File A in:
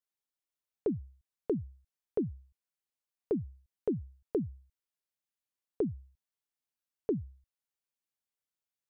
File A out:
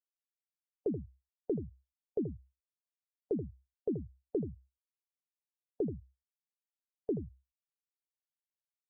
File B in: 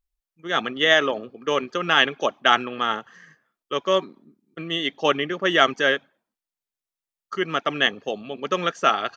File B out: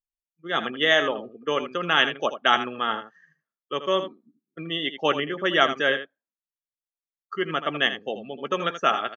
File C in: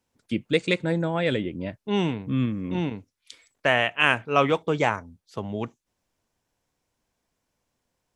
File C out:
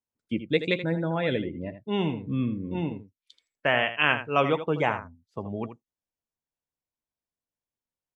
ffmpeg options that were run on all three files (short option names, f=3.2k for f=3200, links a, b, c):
-af "afftdn=nr=18:nf=-37,aecho=1:1:13|80:0.168|0.282,volume=-2.5dB"